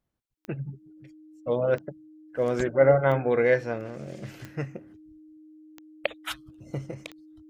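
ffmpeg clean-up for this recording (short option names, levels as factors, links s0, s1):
-af "adeclick=t=4,bandreject=f=310:w=30"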